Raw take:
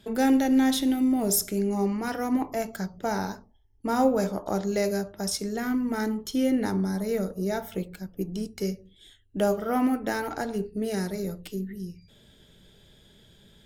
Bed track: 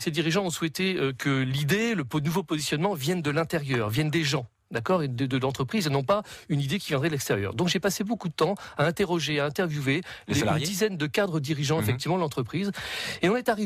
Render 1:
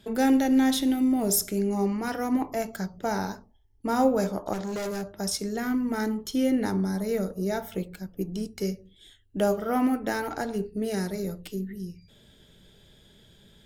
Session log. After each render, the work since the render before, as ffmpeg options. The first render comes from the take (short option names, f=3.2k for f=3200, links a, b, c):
-filter_complex "[0:a]asettb=1/sr,asplit=3[a][b][c];[a]atrim=end=4.534[d];[b]atrim=start=4.53:end=5.13,asetpts=PTS-STARTPTS,afade=t=in:d=0.004:c=qsin,afade=t=out:st=0.596:d=0.004:c=qsin,asoftclip=type=hard:threshold=-29dB[e];[c]atrim=start=5.126[f];[d][e]acrossfade=d=0.004:c1=hsin:c2=qsin[g];[g][f]acrossfade=d=0.004:c1=qsin:c2=hsin"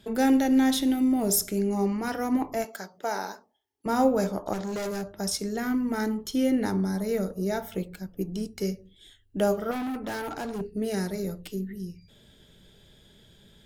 -filter_complex "[0:a]asettb=1/sr,asplit=3[a][b][c];[a]atrim=end=2.644[d];[b]atrim=start=2.64:end=3.86,asetpts=PTS-STARTPTS,afade=t=in:d=0.004:c=qsin,afade=t=out:st=1.216:d=0.004:c=qsin,highpass=420[e];[c]atrim=start=3.856[f];[d][e]acrossfade=d=0.004:c1=hsin:c2=qsin[g];[g][f]acrossfade=d=0.004:c1=qsin:c2=hsin,asettb=1/sr,asplit=3[h][i][j];[h]atrim=end=9.714[k];[i]atrim=start=9.71:end=10.61,asetpts=PTS-STARTPTS,afade=t=in:d=0.004:c=qsin,afade=t=out:st=0.896:d=0.004:c=qsin,asoftclip=type=hard:threshold=-29.5dB[l];[j]atrim=start=10.606[m];[k][l]acrossfade=d=0.004:c1=hsin:c2=qsin[n];[n][m]acrossfade=d=0.004:c1=qsin:c2=hsin"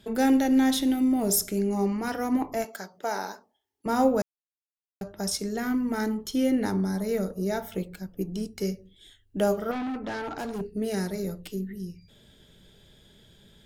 -filter_complex "[0:a]asplit=3[a][b][c];[a]afade=t=out:st=9.71:d=0.02[d];[b]lowpass=5.1k,afade=t=in:st=9.71:d=0.02,afade=t=out:st=10.37:d=0.02[e];[c]afade=t=in:st=10.37:d=0.02[f];[d][e][f]amix=inputs=3:normalize=0,asplit=3[g][h][i];[g]atrim=end=4.22,asetpts=PTS-STARTPTS,afade=t=out:st=4.216:d=0.004:c=hsin[j];[h]atrim=start=4.22:end=5.01,asetpts=PTS-STARTPTS,volume=0[k];[i]atrim=start=5.01,asetpts=PTS-STARTPTS,afade=t=in:d=0.004:c=hsin[l];[j][k][l]concat=n=3:v=0:a=1"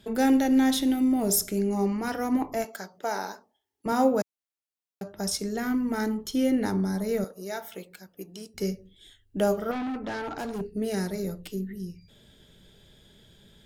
-filter_complex "[0:a]asettb=1/sr,asplit=3[a][b][c];[a]atrim=end=3.924[d];[b]atrim=start=3.92:end=5.14,asetpts=PTS-STARTPTS,afade=t=in:d=0.004:c=qsin,afade=t=out:st=1.216:d=0.004:c=qsin,highpass=140[e];[c]atrim=start=5.136[f];[d][e]acrossfade=d=0.004:c1=hsin:c2=qsin[g];[g][f]acrossfade=d=0.004:c1=qsin:c2=hsin,asettb=1/sr,asplit=3[h][i][j];[h]atrim=end=7.244[k];[i]atrim=start=7.24:end=8.54,asetpts=PTS-STARTPTS,afade=t=in:d=0.004:c=qsin,afade=t=out:st=1.296:d=0.004:c=qsin,highpass=f=850:p=1[l];[j]atrim=start=8.536[m];[k][l]acrossfade=d=0.004:c1=hsin:c2=qsin[n];[n][m]acrossfade=d=0.004:c1=qsin:c2=hsin"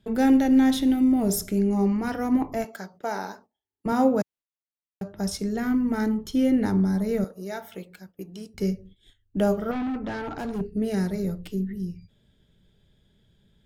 -af "agate=range=-11dB:threshold=-51dB:ratio=16:detection=peak,bass=f=250:g=7,treble=f=4k:g=-5"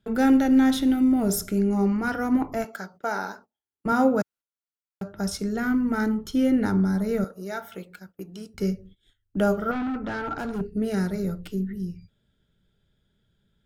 -af "agate=range=-7dB:threshold=-49dB:ratio=16:detection=peak,equalizer=f=1.4k:w=5.9:g=10.5"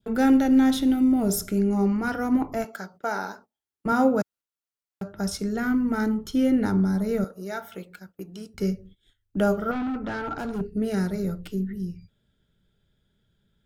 -af "adynamicequalizer=threshold=0.00794:dfrequency=1700:dqfactor=1.6:tfrequency=1700:tqfactor=1.6:attack=5:release=100:ratio=0.375:range=2:mode=cutabove:tftype=bell"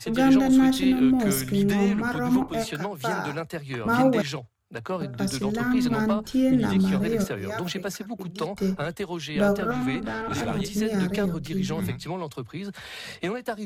-filter_complex "[1:a]volume=-6dB[a];[0:a][a]amix=inputs=2:normalize=0"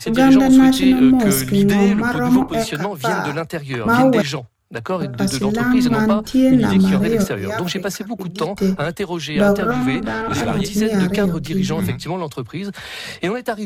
-af "volume=8dB,alimiter=limit=-3dB:level=0:latency=1"